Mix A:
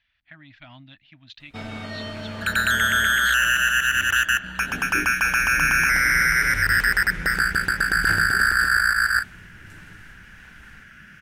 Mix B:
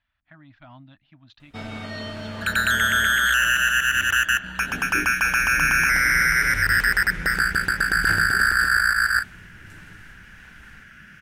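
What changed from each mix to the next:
speech: add resonant high shelf 1600 Hz -8.5 dB, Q 1.5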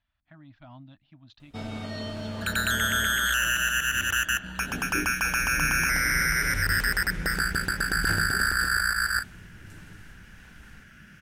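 master: add bell 1800 Hz -7 dB 1.6 oct

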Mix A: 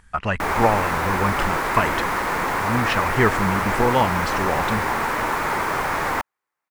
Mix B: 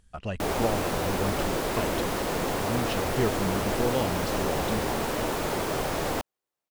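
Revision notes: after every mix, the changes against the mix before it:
speech -7.0 dB; master: add band shelf 1400 Hz -11.5 dB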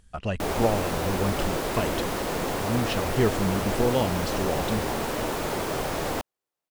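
speech +4.0 dB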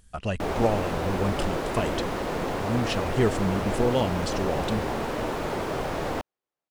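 speech: add high shelf 8200 Hz +9 dB; background: add LPF 2800 Hz 6 dB/oct

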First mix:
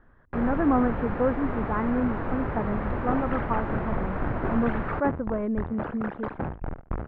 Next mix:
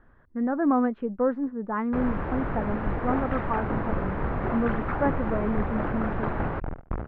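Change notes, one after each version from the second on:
first sound: entry +1.60 s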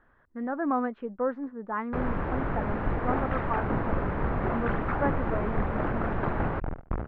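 speech: add low shelf 420 Hz -9.5 dB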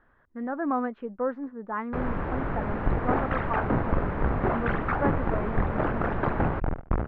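second sound +5.0 dB

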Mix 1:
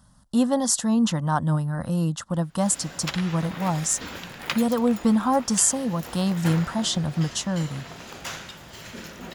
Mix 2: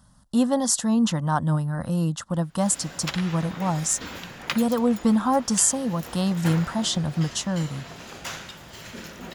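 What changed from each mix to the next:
second sound: add air absorption 470 m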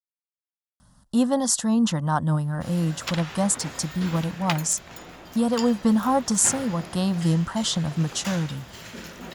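speech: entry +0.80 s

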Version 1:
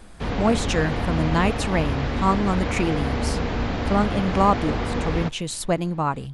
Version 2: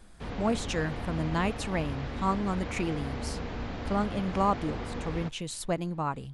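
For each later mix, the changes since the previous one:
speech -7.5 dB; background -11.0 dB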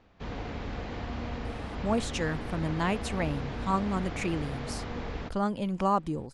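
speech: entry +1.45 s

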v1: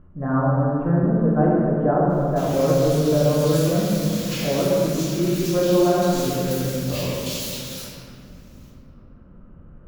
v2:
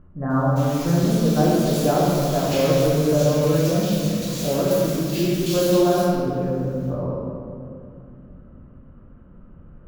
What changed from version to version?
background: entry -1.80 s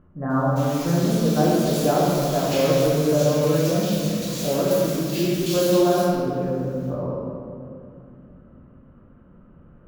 master: add low shelf 82 Hz -10 dB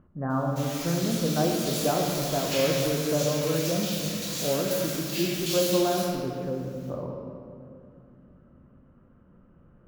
speech: send -8.5 dB

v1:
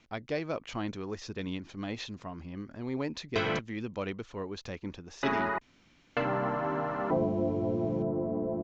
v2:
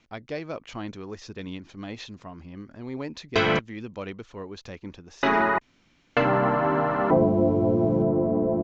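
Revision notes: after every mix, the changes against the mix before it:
background +8.5 dB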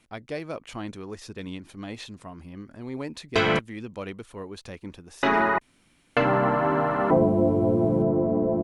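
master: remove steep low-pass 6900 Hz 72 dB/oct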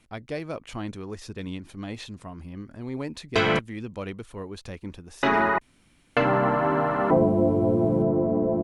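speech: add low shelf 130 Hz +7 dB

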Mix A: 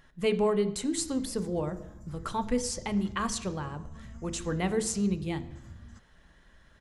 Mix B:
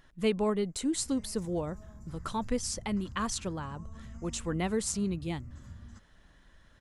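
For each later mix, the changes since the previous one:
reverb: off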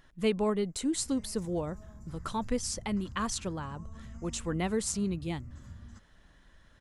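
none

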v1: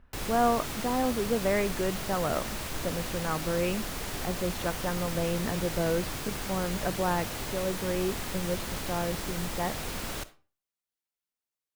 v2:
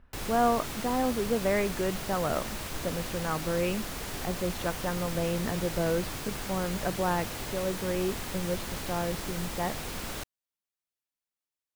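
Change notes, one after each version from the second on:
reverb: off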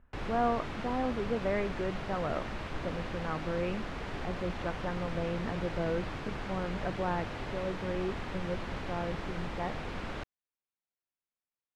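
speech -4.5 dB; master: add LPF 2500 Hz 12 dB/oct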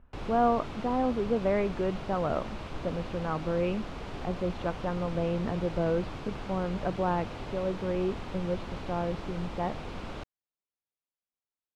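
speech +5.0 dB; master: add bell 1800 Hz -6.5 dB 0.66 oct

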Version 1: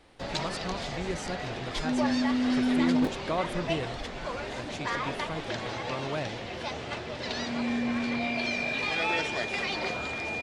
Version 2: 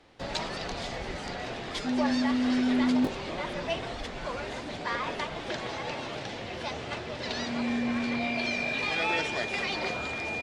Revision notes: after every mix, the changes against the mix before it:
speech -11.5 dB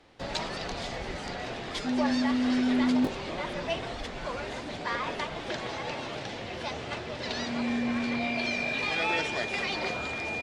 none

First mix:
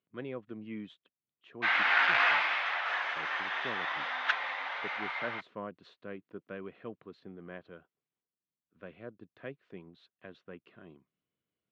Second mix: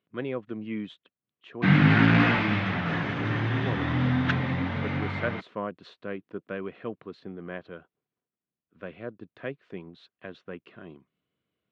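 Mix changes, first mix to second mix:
speech +8.0 dB; background: remove HPF 730 Hz 24 dB/oct

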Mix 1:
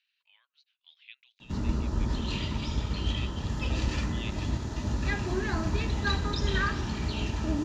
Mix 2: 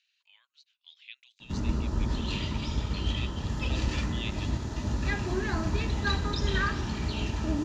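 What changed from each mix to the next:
speech: remove air absorption 180 m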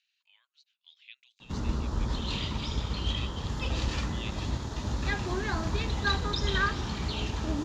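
speech -3.5 dB; background: send -11.5 dB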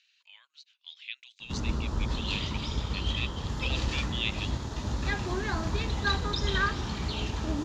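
speech +10.5 dB

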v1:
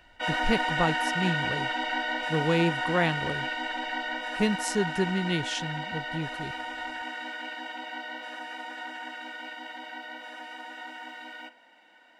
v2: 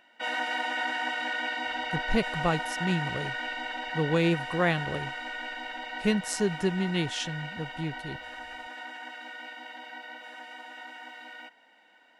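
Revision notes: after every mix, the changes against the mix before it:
speech: entry +1.65 s; reverb: off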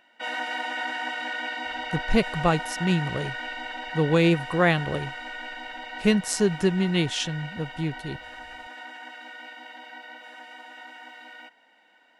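speech +5.0 dB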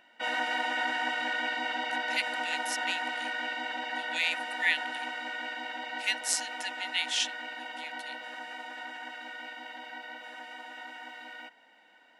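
speech: add brick-wall FIR high-pass 1700 Hz

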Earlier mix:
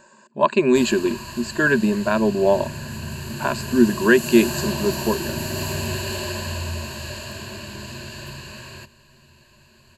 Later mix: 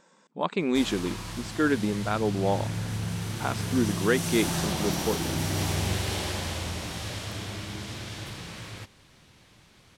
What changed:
speech -6.0 dB; master: remove ripple EQ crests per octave 1.4, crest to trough 16 dB

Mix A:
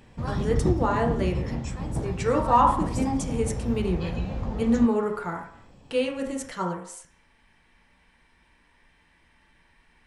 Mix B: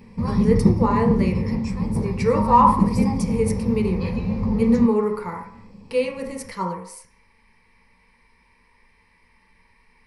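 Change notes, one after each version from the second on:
background: add bell 190 Hz +10 dB 1.3 oct; master: add ripple EQ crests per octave 0.88, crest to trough 12 dB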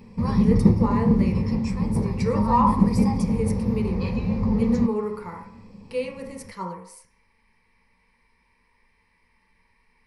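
speech -6.0 dB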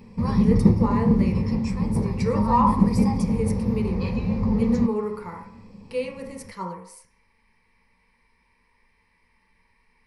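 none

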